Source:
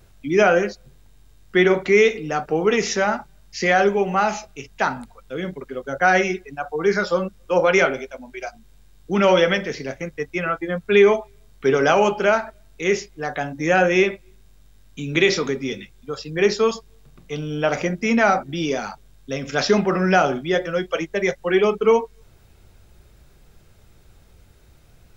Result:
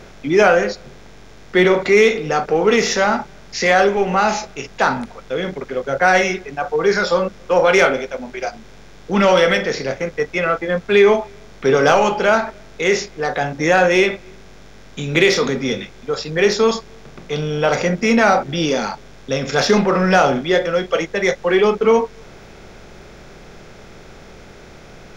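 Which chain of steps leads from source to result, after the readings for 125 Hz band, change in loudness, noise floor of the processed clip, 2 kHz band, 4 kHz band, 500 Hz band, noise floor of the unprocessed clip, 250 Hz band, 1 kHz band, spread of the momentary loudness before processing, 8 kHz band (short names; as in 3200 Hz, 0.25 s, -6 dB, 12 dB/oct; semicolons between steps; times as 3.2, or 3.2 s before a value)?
+3.5 dB, +3.5 dB, -41 dBFS, +3.5 dB, +5.0 dB, +3.5 dB, -52 dBFS, +3.0 dB, +4.0 dB, 16 LU, n/a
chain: per-bin compression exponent 0.6; in parallel at -7 dB: hard clip -14.5 dBFS, distortion -8 dB; on the sum: low shelf 79 Hz +10.5 dB; spectral noise reduction 7 dB; gain -1 dB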